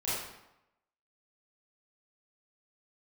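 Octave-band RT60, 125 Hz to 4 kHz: 0.85, 0.85, 0.85, 0.90, 0.80, 0.65 seconds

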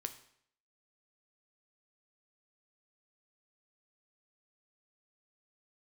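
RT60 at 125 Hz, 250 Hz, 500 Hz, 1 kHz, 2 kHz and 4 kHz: 0.65, 0.65, 0.65, 0.65, 0.65, 0.60 seconds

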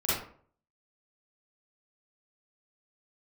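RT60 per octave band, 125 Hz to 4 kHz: 0.60, 0.55, 0.55, 0.50, 0.40, 0.30 seconds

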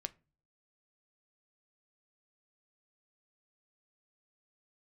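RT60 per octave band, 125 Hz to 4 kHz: 0.65, 0.50, 0.35, 0.30, 0.25, 0.20 seconds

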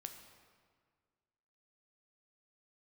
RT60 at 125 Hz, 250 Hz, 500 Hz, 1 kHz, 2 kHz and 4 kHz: 2.0, 2.0, 1.8, 1.8, 1.5, 1.2 seconds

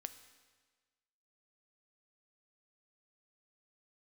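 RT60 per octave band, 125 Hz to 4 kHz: 1.5, 1.4, 1.5, 1.4, 1.4, 1.3 seconds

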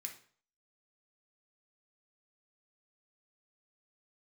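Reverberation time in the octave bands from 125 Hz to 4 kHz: 0.50, 0.45, 0.50, 0.50, 0.45, 0.40 seconds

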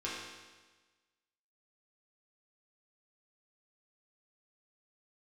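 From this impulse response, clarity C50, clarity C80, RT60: 0.0 dB, 2.0 dB, 1.3 s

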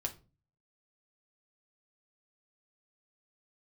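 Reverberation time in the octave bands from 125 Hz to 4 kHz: 0.65, 0.50, 0.40, 0.30, 0.25, 0.25 seconds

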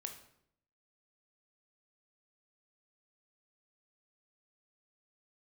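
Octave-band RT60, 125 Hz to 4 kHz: 0.90, 0.85, 0.75, 0.65, 0.60, 0.55 seconds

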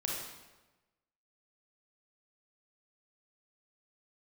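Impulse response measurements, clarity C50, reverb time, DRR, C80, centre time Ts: 0.0 dB, 1.1 s, −3.0 dB, 3.5 dB, 69 ms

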